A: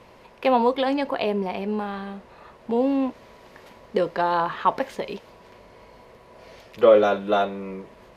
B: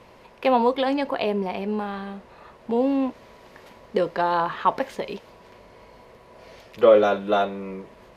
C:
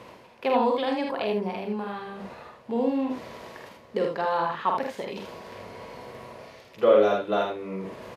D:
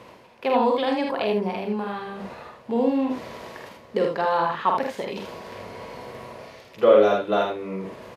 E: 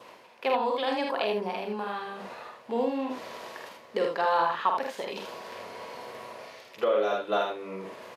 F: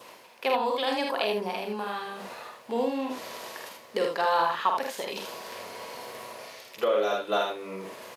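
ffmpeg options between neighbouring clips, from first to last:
-af anull
-af "highpass=79,areverse,acompressor=mode=upward:threshold=-27dB:ratio=2.5,areverse,aecho=1:1:48|79:0.596|0.596,volume=-5.5dB"
-af "dynaudnorm=f=150:g=7:m=3.5dB"
-af "adynamicequalizer=threshold=0.00251:dfrequency=2100:dqfactor=4.8:tfrequency=2100:tqfactor=4.8:attack=5:release=100:ratio=0.375:range=2:mode=cutabove:tftype=bell,alimiter=limit=-12.5dB:level=0:latency=1:release=445,highpass=f=600:p=1"
-af "crystalizer=i=2:c=0"

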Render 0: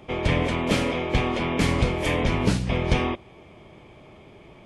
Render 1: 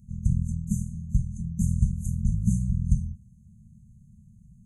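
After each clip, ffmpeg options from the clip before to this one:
-af "afftfilt=real='re*(1-between(b*sr/4096,230,6100))':imag='im*(1-between(b*sr/4096,230,6100))':win_size=4096:overlap=0.75,lowshelf=f=130:g=4.5,volume=-2dB"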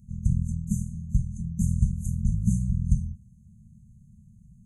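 -af anull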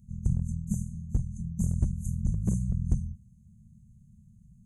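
-af "aeval=exprs='clip(val(0),-1,0.126)':c=same,volume=-3dB"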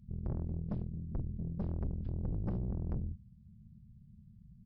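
-af "aeval=exprs='(tanh(39.8*val(0)+0.4)-tanh(0.4))/39.8':c=same,aresample=11025,aresample=44100"

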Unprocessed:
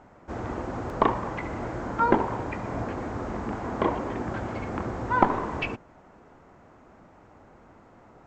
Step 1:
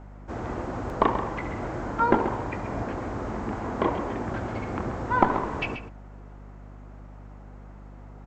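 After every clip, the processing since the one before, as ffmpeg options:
-af "aecho=1:1:134:0.316,aeval=exprs='val(0)+0.00708*(sin(2*PI*50*n/s)+sin(2*PI*2*50*n/s)/2+sin(2*PI*3*50*n/s)/3+sin(2*PI*4*50*n/s)/4+sin(2*PI*5*50*n/s)/5)':c=same"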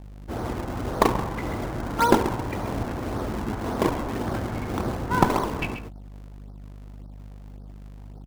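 -filter_complex "[0:a]anlmdn=0.0398,asplit=2[a][b];[b]acrusher=samples=42:mix=1:aa=0.000001:lfo=1:lforange=67.2:lforate=1.8,volume=-3.5dB[c];[a][c]amix=inputs=2:normalize=0,volume=-1dB"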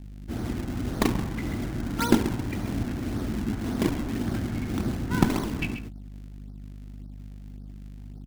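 -af "equalizer=f=250:t=o:w=1:g=5,equalizer=f=500:t=o:w=1:g=-9,equalizer=f=1k:t=o:w=1:g=-10"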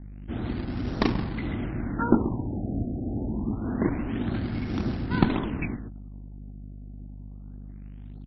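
-af "afftfilt=real='re*lt(b*sr/1024,770*pow(5800/770,0.5+0.5*sin(2*PI*0.26*pts/sr)))':imag='im*lt(b*sr/1024,770*pow(5800/770,0.5+0.5*sin(2*PI*0.26*pts/sr)))':win_size=1024:overlap=0.75"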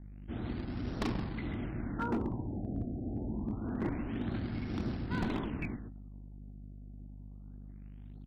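-af "volume=20.5dB,asoftclip=hard,volume=-20.5dB,bandreject=f=263:t=h:w=4,bandreject=f=526:t=h:w=4,bandreject=f=789:t=h:w=4,bandreject=f=1.052k:t=h:w=4,bandreject=f=1.315k:t=h:w=4,bandreject=f=1.578k:t=h:w=4,bandreject=f=1.841k:t=h:w=4,volume=-7dB"

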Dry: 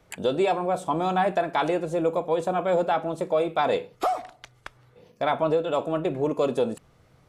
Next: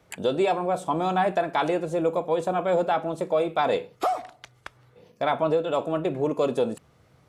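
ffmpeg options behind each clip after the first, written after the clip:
-af "highpass=56"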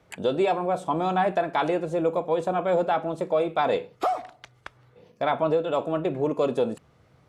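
-af "highshelf=f=6.7k:g=-8"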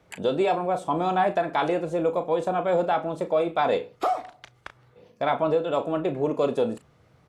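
-filter_complex "[0:a]asplit=2[a][b];[b]adelay=35,volume=-11dB[c];[a][c]amix=inputs=2:normalize=0"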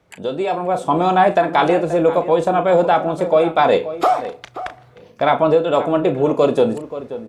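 -filter_complex "[0:a]dynaudnorm=f=450:g=3:m=10dB,asplit=2[a][b];[b]adelay=530.6,volume=-13dB,highshelf=f=4k:g=-11.9[c];[a][c]amix=inputs=2:normalize=0"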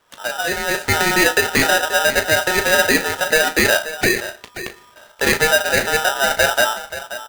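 -filter_complex "[0:a]asplit=2[a][b];[b]adelay=17,volume=-11dB[c];[a][c]amix=inputs=2:normalize=0,aeval=exprs='val(0)*sgn(sin(2*PI*1100*n/s))':c=same,volume=-1.5dB"

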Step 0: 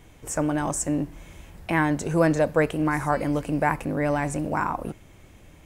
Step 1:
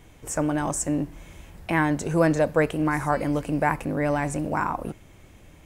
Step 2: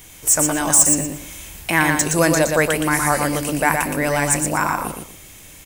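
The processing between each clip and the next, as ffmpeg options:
-af anull
-filter_complex "[0:a]acrossover=split=2300[a][b];[b]asoftclip=type=tanh:threshold=-27dB[c];[a][c]amix=inputs=2:normalize=0,crystalizer=i=8:c=0,aecho=1:1:118|236|354:0.596|0.149|0.0372,volume=1dB"

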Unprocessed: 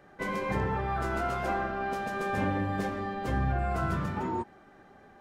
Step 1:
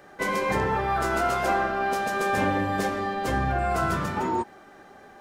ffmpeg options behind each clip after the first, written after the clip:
-af "bass=f=250:g=-7,treble=f=4k:g=6,volume=7dB"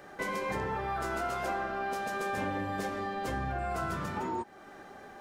-af "acompressor=threshold=-38dB:ratio=2"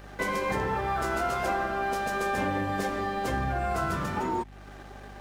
-filter_complex "[0:a]acrossover=split=110[a][b];[b]aeval=exprs='sgn(val(0))*max(abs(val(0))-0.00168,0)':c=same[c];[a][c]amix=inputs=2:normalize=0,aeval=exprs='val(0)+0.00251*(sin(2*PI*50*n/s)+sin(2*PI*2*50*n/s)/2+sin(2*PI*3*50*n/s)/3+sin(2*PI*4*50*n/s)/4+sin(2*PI*5*50*n/s)/5)':c=same,volume=5.5dB"

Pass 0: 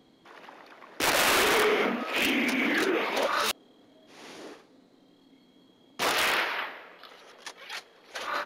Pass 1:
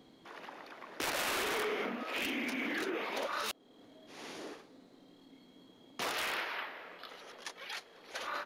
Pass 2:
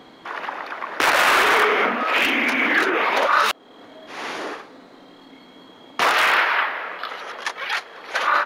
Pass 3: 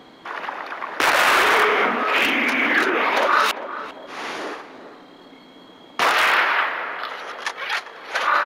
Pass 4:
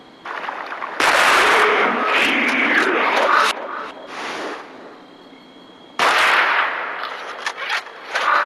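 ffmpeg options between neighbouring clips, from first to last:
-af "acompressor=threshold=-42dB:ratio=2"
-af "equalizer=f=1.3k:w=0.46:g=13,volume=8.5dB"
-filter_complex "[0:a]asplit=2[a][b];[b]adelay=398,lowpass=f=1.2k:p=1,volume=-10.5dB,asplit=2[c][d];[d]adelay=398,lowpass=f=1.2k:p=1,volume=0.4,asplit=2[e][f];[f]adelay=398,lowpass=f=1.2k:p=1,volume=0.4,asplit=2[g][h];[h]adelay=398,lowpass=f=1.2k:p=1,volume=0.4[i];[a][c][e][g][i]amix=inputs=5:normalize=0"
-af "volume=2.5dB" -ar 32000 -c:a ac3 -b:a 64k

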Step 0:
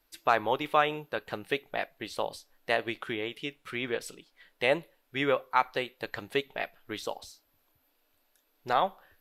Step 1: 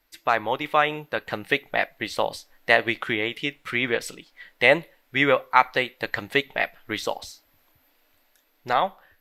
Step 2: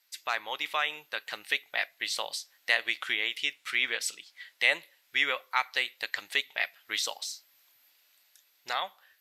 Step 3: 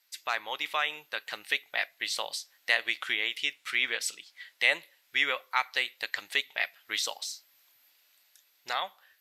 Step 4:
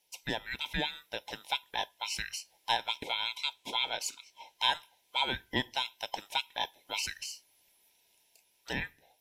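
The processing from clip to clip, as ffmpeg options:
-af "equalizer=f=400:t=o:w=0.33:g=-4,equalizer=f=2k:t=o:w=0.33:g=6,equalizer=f=10k:t=o:w=0.33:g=-5,dynaudnorm=f=300:g=7:m=6dB,volume=2.5dB"
-filter_complex "[0:a]asplit=2[a][b];[b]alimiter=limit=-13dB:level=0:latency=1:release=413,volume=2.5dB[c];[a][c]amix=inputs=2:normalize=0,bandpass=f=6.7k:t=q:w=0.69:csg=0,volume=-1.5dB"
-af anull
-af "afftfilt=real='real(if(lt(b,960),b+48*(1-2*mod(floor(b/48),2)),b),0)':imag='imag(if(lt(b,960),b+48*(1-2*mod(floor(b/48),2)),b),0)':win_size=2048:overlap=0.75,volume=-3.5dB"

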